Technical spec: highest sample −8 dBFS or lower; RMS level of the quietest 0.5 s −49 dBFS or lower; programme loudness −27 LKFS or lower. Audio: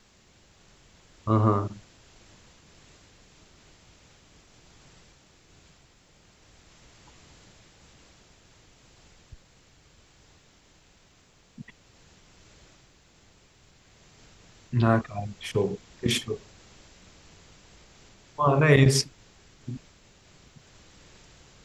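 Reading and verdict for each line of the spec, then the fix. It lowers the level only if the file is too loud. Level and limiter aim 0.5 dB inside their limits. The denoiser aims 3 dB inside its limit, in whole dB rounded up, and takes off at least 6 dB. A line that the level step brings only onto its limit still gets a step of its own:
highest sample −6.0 dBFS: out of spec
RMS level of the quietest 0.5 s −60 dBFS: in spec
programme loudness −25.0 LKFS: out of spec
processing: level −2.5 dB

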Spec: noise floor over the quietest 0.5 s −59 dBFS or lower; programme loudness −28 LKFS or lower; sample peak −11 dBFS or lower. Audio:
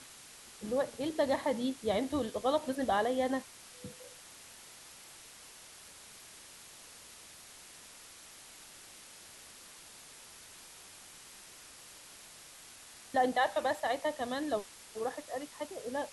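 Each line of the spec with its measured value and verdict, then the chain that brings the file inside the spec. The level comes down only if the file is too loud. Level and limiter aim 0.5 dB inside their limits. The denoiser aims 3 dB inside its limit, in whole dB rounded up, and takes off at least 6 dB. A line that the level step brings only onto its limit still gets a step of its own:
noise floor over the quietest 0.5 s −53 dBFS: out of spec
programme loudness −34.0 LKFS: in spec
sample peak −17.0 dBFS: in spec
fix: broadband denoise 9 dB, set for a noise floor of −53 dBFS

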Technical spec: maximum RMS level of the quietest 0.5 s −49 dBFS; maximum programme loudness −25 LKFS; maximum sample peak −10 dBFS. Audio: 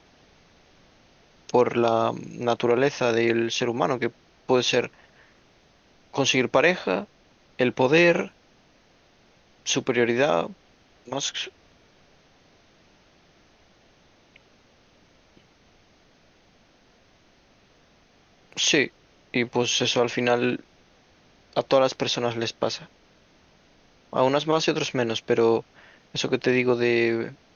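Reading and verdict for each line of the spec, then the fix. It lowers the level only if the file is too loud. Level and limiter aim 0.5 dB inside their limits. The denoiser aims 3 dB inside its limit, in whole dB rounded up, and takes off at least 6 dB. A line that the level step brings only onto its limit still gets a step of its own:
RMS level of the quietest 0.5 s −59 dBFS: in spec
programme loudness −23.5 LKFS: out of spec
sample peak −5.5 dBFS: out of spec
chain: level −2 dB
brickwall limiter −10.5 dBFS

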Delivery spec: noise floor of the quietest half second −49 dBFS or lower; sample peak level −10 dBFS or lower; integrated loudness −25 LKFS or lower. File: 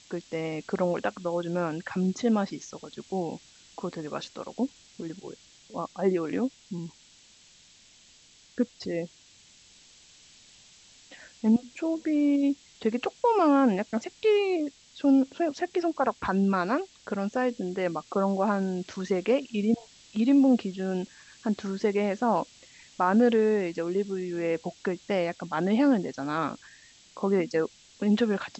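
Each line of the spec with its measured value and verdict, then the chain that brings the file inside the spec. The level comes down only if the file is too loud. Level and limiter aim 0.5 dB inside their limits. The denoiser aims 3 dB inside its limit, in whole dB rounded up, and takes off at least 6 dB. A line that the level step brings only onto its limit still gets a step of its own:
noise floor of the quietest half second −57 dBFS: in spec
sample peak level −12.0 dBFS: in spec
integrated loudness −27.5 LKFS: in spec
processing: no processing needed

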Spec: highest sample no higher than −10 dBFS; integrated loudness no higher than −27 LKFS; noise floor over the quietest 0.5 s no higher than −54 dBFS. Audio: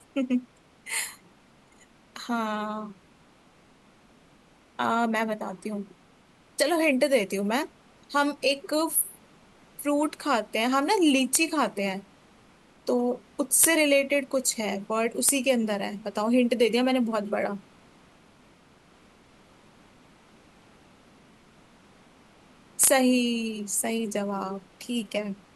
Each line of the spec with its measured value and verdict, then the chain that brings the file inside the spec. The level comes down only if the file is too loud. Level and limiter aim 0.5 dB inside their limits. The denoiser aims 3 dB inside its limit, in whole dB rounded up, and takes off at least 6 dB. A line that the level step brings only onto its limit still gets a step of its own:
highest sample −5.5 dBFS: out of spec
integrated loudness −25.5 LKFS: out of spec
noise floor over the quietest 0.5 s −58 dBFS: in spec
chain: level −2 dB
brickwall limiter −10.5 dBFS

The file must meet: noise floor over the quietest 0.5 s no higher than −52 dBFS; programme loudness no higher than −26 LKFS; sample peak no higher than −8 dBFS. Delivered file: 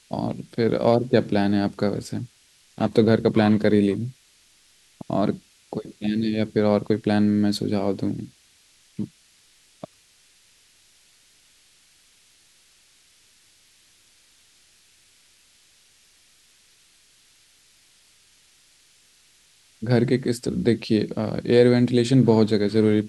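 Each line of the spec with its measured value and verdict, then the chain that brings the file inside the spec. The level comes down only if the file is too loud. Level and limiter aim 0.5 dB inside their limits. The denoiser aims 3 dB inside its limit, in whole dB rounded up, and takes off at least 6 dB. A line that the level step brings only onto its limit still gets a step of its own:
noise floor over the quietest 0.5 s −58 dBFS: in spec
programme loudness −22.0 LKFS: out of spec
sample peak −4.5 dBFS: out of spec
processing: level −4.5 dB

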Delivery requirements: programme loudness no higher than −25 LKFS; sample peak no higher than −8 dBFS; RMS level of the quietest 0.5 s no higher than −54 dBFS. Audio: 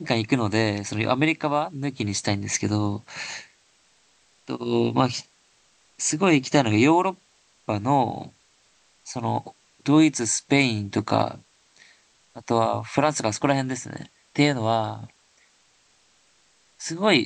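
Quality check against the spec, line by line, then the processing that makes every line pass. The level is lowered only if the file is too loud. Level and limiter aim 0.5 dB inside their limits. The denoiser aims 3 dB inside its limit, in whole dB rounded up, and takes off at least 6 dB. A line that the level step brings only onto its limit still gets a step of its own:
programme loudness −23.5 LKFS: out of spec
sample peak −4.5 dBFS: out of spec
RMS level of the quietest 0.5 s −62 dBFS: in spec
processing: level −2 dB
brickwall limiter −8.5 dBFS

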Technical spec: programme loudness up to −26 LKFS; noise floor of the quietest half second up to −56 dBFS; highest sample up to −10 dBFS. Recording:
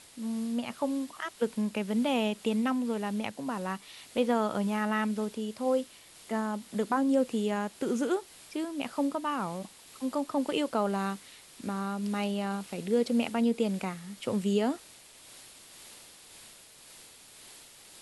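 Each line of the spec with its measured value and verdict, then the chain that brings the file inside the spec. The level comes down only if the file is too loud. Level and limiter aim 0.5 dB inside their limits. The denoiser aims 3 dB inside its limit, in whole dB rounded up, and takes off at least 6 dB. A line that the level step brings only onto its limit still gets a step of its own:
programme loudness −31.5 LKFS: in spec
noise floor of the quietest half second −53 dBFS: out of spec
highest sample −15.0 dBFS: in spec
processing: broadband denoise 6 dB, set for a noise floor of −53 dBFS

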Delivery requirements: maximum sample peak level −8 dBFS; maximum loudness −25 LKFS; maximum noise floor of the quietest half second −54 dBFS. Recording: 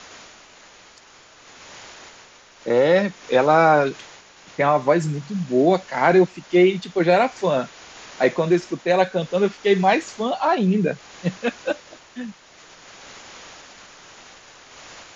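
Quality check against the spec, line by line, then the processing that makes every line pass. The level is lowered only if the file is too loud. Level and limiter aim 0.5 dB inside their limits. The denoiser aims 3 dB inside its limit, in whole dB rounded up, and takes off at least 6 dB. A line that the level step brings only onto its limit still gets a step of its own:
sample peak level −4.0 dBFS: out of spec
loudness −20.0 LKFS: out of spec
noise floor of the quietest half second −49 dBFS: out of spec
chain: level −5.5 dB

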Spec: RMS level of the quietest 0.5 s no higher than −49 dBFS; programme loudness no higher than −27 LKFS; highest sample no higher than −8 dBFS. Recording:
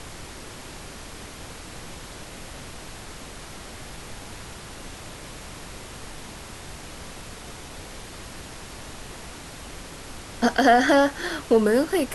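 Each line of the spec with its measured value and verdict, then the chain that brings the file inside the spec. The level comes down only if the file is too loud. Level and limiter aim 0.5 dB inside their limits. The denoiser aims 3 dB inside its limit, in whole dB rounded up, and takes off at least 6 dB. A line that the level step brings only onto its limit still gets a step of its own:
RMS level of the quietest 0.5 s −40 dBFS: out of spec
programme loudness −20.0 LKFS: out of spec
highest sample −6.5 dBFS: out of spec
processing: broadband denoise 6 dB, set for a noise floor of −40 dBFS
level −7.5 dB

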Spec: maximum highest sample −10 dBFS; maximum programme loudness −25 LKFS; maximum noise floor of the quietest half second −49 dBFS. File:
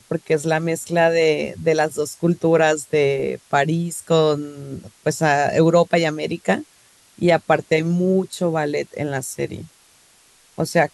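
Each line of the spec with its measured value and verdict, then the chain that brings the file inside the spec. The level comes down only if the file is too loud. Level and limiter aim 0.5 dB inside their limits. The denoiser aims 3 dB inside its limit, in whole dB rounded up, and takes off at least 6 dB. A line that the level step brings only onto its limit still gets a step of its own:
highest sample −4.5 dBFS: out of spec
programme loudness −20.0 LKFS: out of spec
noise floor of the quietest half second −54 dBFS: in spec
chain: level −5.5 dB
brickwall limiter −10.5 dBFS

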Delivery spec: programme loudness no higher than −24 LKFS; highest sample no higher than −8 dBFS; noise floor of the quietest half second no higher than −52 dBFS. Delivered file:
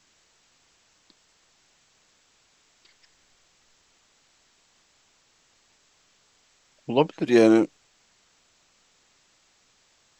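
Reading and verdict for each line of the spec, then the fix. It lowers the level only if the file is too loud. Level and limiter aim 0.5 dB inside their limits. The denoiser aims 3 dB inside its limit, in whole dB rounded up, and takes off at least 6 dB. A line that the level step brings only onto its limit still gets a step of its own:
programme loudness −21.0 LKFS: out of spec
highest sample −5.0 dBFS: out of spec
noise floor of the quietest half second −64 dBFS: in spec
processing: level −3.5 dB

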